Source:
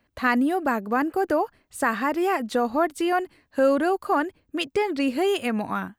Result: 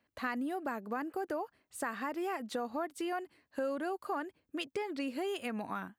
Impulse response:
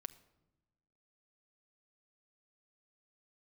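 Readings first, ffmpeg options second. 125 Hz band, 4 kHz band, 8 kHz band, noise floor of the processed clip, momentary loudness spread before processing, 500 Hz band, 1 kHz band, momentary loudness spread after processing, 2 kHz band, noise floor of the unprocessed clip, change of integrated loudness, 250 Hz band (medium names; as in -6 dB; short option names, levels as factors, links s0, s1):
no reading, -11.5 dB, -9.5 dB, -83 dBFS, 6 LU, -14.0 dB, -13.5 dB, 4 LU, -13.5 dB, -71 dBFS, -13.5 dB, -13.5 dB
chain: -af "highpass=f=160:p=1,acompressor=threshold=0.0447:ratio=2.5,volume=0.398"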